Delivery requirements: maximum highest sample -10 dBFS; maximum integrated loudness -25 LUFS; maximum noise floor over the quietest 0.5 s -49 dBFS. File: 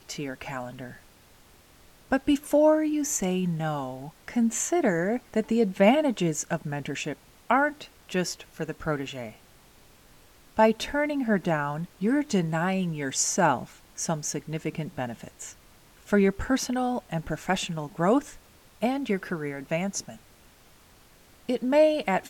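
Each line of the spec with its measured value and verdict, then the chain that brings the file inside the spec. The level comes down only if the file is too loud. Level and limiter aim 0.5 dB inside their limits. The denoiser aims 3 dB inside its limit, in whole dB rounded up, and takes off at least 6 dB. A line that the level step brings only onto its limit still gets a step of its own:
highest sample -7.0 dBFS: fail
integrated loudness -27.0 LUFS: OK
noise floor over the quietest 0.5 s -56 dBFS: OK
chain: limiter -10.5 dBFS

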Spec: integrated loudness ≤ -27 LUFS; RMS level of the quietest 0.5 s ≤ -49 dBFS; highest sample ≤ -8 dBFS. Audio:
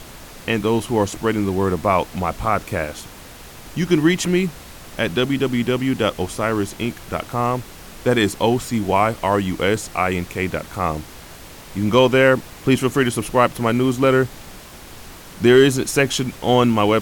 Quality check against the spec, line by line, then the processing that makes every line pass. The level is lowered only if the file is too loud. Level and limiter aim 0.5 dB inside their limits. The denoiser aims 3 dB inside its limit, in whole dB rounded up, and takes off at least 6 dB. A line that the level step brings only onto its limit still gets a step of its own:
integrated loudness -19.5 LUFS: fail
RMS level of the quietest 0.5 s -39 dBFS: fail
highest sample -3.5 dBFS: fail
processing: denoiser 6 dB, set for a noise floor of -39 dBFS; gain -8 dB

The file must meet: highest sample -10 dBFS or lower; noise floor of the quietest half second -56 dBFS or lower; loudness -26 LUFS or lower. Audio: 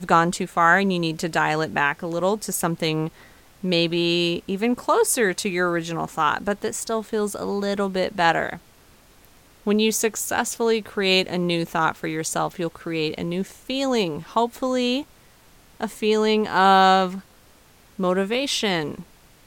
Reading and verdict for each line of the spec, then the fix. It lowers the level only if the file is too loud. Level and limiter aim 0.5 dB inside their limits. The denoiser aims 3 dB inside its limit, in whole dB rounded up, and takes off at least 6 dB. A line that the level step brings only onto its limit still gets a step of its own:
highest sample -4.5 dBFS: fail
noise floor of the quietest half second -53 dBFS: fail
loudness -22.5 LUFS: fail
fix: gain -4 dB; limiter -10.5 dBFS

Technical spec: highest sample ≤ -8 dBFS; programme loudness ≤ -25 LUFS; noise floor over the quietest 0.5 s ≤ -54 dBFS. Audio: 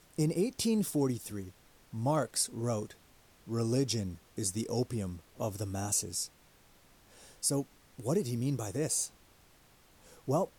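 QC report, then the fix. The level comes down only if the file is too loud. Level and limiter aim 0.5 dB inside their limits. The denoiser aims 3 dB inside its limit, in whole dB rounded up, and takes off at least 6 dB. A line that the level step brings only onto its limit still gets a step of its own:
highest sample -15.5 dBFS: OK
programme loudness -33.5 LUFS: OK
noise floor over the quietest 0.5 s -62 dBFS: OK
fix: none

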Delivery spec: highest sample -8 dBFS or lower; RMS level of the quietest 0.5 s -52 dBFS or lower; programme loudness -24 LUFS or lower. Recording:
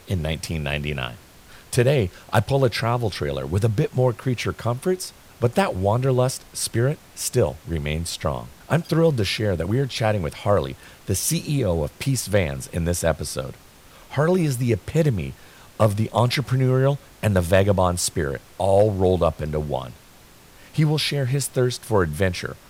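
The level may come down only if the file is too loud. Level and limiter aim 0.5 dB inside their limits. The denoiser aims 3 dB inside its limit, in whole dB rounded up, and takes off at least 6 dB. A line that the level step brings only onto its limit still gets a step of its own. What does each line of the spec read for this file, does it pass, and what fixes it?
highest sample -3.0 dBFS: fail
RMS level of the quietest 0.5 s -49 dBFS: fail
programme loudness -22.5 LUFS: fail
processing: denoiser 6 dB, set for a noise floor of -49 dBFS; gain -2 dB; limiter -8.5 dBFS

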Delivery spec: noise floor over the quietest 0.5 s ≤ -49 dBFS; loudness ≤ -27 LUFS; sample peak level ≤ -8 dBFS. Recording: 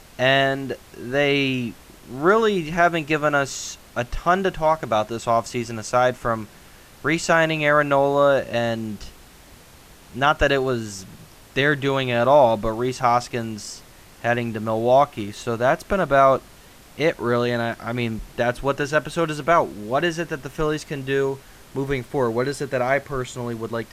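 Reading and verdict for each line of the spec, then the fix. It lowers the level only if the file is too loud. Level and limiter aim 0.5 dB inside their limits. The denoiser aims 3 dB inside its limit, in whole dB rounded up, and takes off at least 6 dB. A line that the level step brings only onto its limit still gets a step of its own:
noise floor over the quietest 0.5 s -47 dBFS: fail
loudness -21.5 LUFS: fail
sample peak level -5.0 dBFS: fail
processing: gain -6 dB

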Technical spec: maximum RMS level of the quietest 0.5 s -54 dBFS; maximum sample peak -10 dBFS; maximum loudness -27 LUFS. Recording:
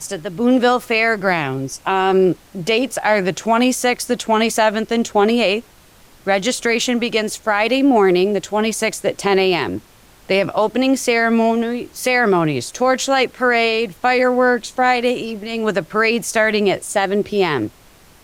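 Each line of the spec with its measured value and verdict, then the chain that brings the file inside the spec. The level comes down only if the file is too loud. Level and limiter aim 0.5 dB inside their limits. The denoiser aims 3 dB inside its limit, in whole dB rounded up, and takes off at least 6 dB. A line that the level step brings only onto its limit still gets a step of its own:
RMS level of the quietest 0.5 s -47 dBFS: fail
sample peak -5.5 dBFS: fail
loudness -17.0 LUFS: fail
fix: gain -10.5 dB

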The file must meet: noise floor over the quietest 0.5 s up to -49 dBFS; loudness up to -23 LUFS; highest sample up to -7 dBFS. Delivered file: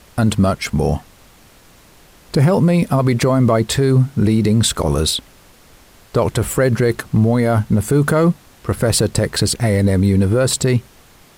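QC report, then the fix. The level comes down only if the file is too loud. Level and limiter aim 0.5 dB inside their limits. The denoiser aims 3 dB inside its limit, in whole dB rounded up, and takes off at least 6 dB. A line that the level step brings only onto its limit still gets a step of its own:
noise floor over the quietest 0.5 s -47 dBFS: fail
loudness -16.5 LUFS: fail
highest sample -5.5 dBFS: fail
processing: gain -7 dB

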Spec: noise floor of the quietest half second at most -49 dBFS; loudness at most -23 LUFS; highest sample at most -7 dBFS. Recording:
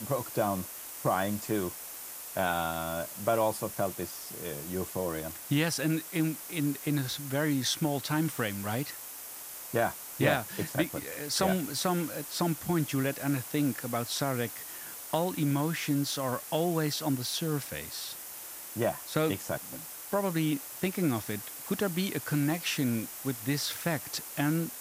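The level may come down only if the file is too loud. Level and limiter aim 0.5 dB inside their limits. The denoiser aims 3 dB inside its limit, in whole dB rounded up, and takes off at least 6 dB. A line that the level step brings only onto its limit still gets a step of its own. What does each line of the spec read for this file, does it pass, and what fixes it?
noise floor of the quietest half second -43 dBFS: fail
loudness -31.5 LUFS: OK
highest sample -12.0 dBFS: OK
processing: denoiser 9 dB, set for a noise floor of -43 dBFS

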